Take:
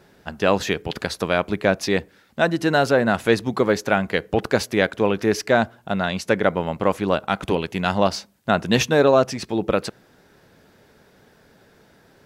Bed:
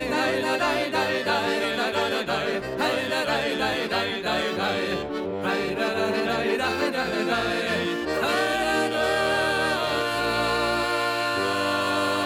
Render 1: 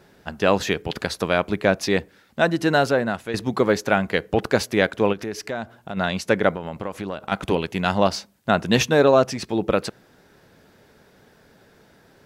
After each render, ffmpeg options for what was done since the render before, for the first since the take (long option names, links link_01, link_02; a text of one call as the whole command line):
ffmpeg -i in.wav -filter_complex "[0:a]asplit=3[link_01][link_02][link_03];[link_01]afade=type=out:start_time=5.12:duration=0.02[link_04];[link_02]acompressor=threshold=-30dB:ratio=2.5:attack=3.2:release=140:knee=1:detection=peak,afade=type=in:start_time=5.12:duration=0.02,afade=type=out:start_time=5.96:duration=0.02[link_05];[link_03]afade=type=in:start_time=5.96:duration=0.02[link_06];[link_04][link_05][link_06]amix=inputs=3:normalize=0,asettb=1/sr,asplit=3[link_07][link_08][link_09];[link_07]atrim=end=6.514[link_10];[link_08]atrim=start=6.51:end=7.32,asetpts=PTS-STARTPTS,afade=type=in:duration=0.004:curve=qsin,afade=type=out:start_time=0.806:duration=0.004:curve=qsin,acompressor=threshold=-26dB:ratio=4:attack=3.2:release=140:knee=1:detection=peak[link_11];[link_09]atrim=start=7.316[link_12];[link_10][link_11]acrossfade=duration=0.004:curve1=hsin:curve2=qsin[link_13];[link_13][link_12]acrossfade=duration=0.004:curve1=qsin:curve2=hsin,asplit=2[link_14][link_15];[link_14]atrim=end=3.34,asetpts=PTS-STARTPTS,afade=type=out:start_time=2.77:duration=0.57:silence=0.199526[link_16];[link_15]atrim=start=3.34,asetpts=PTS-STARTPTS,afade=type=in:duration=0.004:curve=hsin:silence=0.199526[link_17];[link_16][link_17]concat=n=2:v=0:a=1" out.wav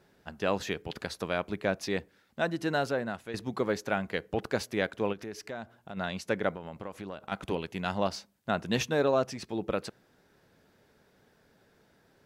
ffmpeg -i in.wav -af "volume=-10.5dB" out.wav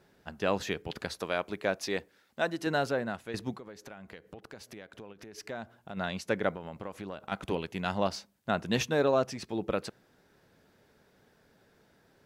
ffmpeg -i in.wav -filter_complex "[0:a]asettb=1/sr,asplit=3[link_01][link_02][link_03];[link_01]atrim=end=1.204[link_04];[link_02]atrim=start=1.2:end=2.67,asetpts=PTS-STARTPTS,afade=type=in:duration=0.004:curve=qsin,afade=type=out:start_time=1.466:duration=0.004:curve=qsin,bass=frequency=250:gain=-7,treble=frequency=4000:gain=2[link_05];[link_03]atrim=start=2.666[link_06];[link_04][link_05]acrossfade=duration=0.004:curve1=hsin:curve2=qsin[link_07];[link_07][link_06]acrossfade=duration=0.004:curve1=qsin:curve2=hsin,asettb=1/sr,asplit=3[link_08][link_09][link_10];[link_08]atrim=end=3.564[link_11];[link_09]atrim=start=3.56:end=5.38,asetpts=PTS-STARTPTS,afade=type=in:duration=0.004:curve=qsin,afade=type=out:start_time=1.816:duration=0.004:curve=qsin,acompressor=threshold=-44dB:ratio=6:attack=3.2:release=140:knee=1:detection=peak[link_12];[link_10]atrim=start=5.376[link_13];[link_11][link_12]acrossfade=duration=0.004:curve1=hsin:curve2=qsin[link_14];[link_14][link_13]acrossfade=duration=0.004:curve1=qsin:curve2=hsin" out.wav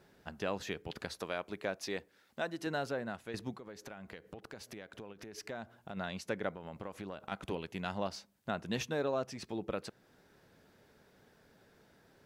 ffmpeg -i in.wav -af "acompressor=threshold=-45dB:ratio=1.5" out.wav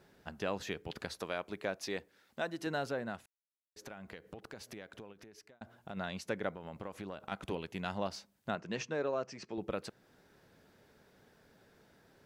ffmpeg -i in.wav -filter_complex "[0:a]asettb=1/sr,asplit=3[link_01][link_02][link_03];[link_01]atrim=end=8.554[link_04];[link_02]atrim=start=8.55:end=9.58,asetpts=PTS-STARTPTS,afade=type=in:duration=0.004:curve=qsin,afade=type=out:start_time=1.026:duration=0.004:curve=qsin,highpass=160,equalizer=frequency=250:width_type=q:width=4:gain=-5,equalizer=frequency=790:width_type=q:width=4:gain=-4,equalizer=frequency=3600:width_type=q:width=4:gain=-9,lowpass=frequency=6600:width=0.5412,lowpass=frequency=6600:width=1.3066[link_05];[link_03]atrim=start=9.576[link_06];[link_04][link_05]acrossfade=duration=0.004:curve1=hsin:curve2=qsin[link_07];[link_07][link_06]acrossfade=duration=0.004:curve1=qsin:curve2=hsin,asplit=4[link_08][link_09][link_10][link_11];[link_08]atrim=end=3.26,asetpts=PTS-STARTPTS,afade=type=out:start_time=3.256:duration=0.004:curve=hsin[link_12];[link_09]atrim=start=3.26:end=3.76,asetpts=PTS-STARTPTS,volume=0[link_13];[link_10]atrim=start=3.76:end=5.61,asetpts=PTS-STARTPTS,afade=type=in:duration=0.004:curve=hsin,afade=type=out:start_time=1.12:duration=0.73[link_14];[link_11]atrim=start=5.61,asetpts=PTS-STARTPTS,afade=type=in:duration=0.004:curve=hsin[link_15];[link_12][link_13][link_14][link_15]concat=n=4:v=0:a=1" out.wav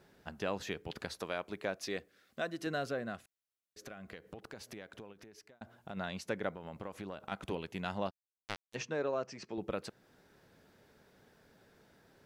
ffmpeg -i in.wav -filter_complex "[0:a]asettb=1/sr,asplit=3[link_01][link_02][link_03];[link_01]atrim=end=1.754[link_04];[link_02]atrim=start=1.75:end=4.15,asetpts=PTS-STARTPTS,afade=type=in:duration=0.004:curve=qsin,afade=type=out:start_time=2.396:duration=0.004:curve=qsin,asuperstop=centerf=890:order=4:qfactor=4.4[link_05];[link_03]atrim=start=4.146[link_06];[link_04][link_05]acrossfade=duration=0.004:curve1=hsin:curve2=qsin[link_07];[link_07][link_06]acrossfade=duration=0.004:curve1=qsin:curve2=hsin,asplit=3[link_08][link_09][link_10];[link_08]afade=type=out:start_time=8.09:duration=0.02[link_11];[link_09]acrusher=bits=3:mix=0:aa=0.5,afade=type=in:start_time=8.09:duration=0.02,afade=type=out:start_time=8.74:duration=0.02[link_12];[link_10]afade=type=in:start_time=8.74:duration=0.02[link_13];[link_11][link_12][link_13]amix=inputs=3:normalize=0" out.wav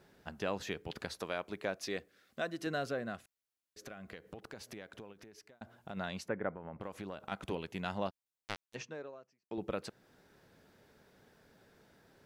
ffmpeg -i in.wav -filter_complex "[0:a]asettb=1/sr,asplit=3[link_01][link_02][link_03];[link_01]atrim=end=6.284[link_04];[link_02]atrim=start=6.28:end=6.81,asetpts=PTS-STARTPTS,afade=type=in:duration=0.004:curve=qsin,afade=type=out:start_time=0.526:duration=0.004:curve=qsin,lowpass=frequency=2000:width=0.5412,lowpass=frequency=2000:width=1.3066[link_05];[link_03]atrim=start=6.806[link_06];[link_04][link_05]acrossfade=duration=0.004:curve1=hsin:curve2=qsin[link_07];[link_07][link_06]acrossfade=duration=0.004:curve1=qsin:curve2=hsin,asplit=2[link_08][link_09];[link_08]atrim=end=9.51,asetpts=PTS-STARTPTS,afade=type=out:start_time=8.6:duration=0.91:curve=qua[link_10];[link_09]atrim=start=9.51,asetpts=PTS-STARTPTS,afade=type=in:duration=0.004:curve=hsin[link_11];[link_10][link_11]concat=n=2:v=0:a=1" out.wav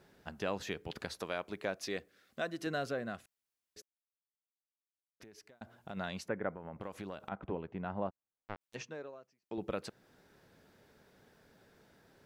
ffmpeg -i in.wav -filter_complex "[0:a]asettb=1/sr,asplit=3[link_01][link_02][link_03];[link_01]atrim=end=7.294[link_04];[link_02]atrim=start=7.29:end=8.61,asetpts=PTS-STARTPTS,afade=type=in:duration=0.004:curve=qsin,afade=type=out:start_time=1.316:duration=0.004:curve=qsin,lowpass=1300[link_05];[link_03]atrim=start=8.606[link_06];[link_04][link_05]acrossfade=duration=0.004:curve1=hsin:curve2=qsin[link_07];[link_07][link_06]acrossfade=duration=0.004:curve1=qsin:curve2=hsin,asplit=3[link_08][link_09][link_10];[link_08]atrim=end=3.82,asetpts=PTS-STARTPTS,afade=type=out:start_time=3.816:duration=0.004:curve=hsin[link_11];[link_09]atrim=start=3.82:end=5.2,asetpts=PTS-STARTPTS,volume=0[link_12];[link_10]atrim=start=5.2,asetpts=PTS-STARTPTS,afade=type=in:duration=0.004:curve=hsin[link_13];[link_11][link_12][link_13]concat=n=3:v=0:a=1" out.wav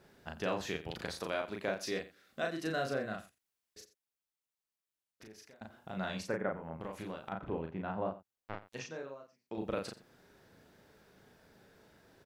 ffmpeg -i in.wav -filter_complex "[0:a]asplit=2[link_01][link_02];[link_02]adelay=37,volume=-3dB[link_03];[link_01][link_03]amix=inputs=2:normalize=0,aecho=1:1:87:0.158" out.wav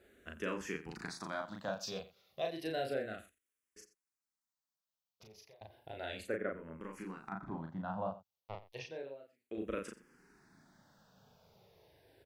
ffmpeg -i in.wav -filter_complex "[0:a]asplit=2[link_01][link_02];[link_02]afreqshift=-0.32[link_03];[link_01][link_03]amix=inputs=2:normalize=1" out.wav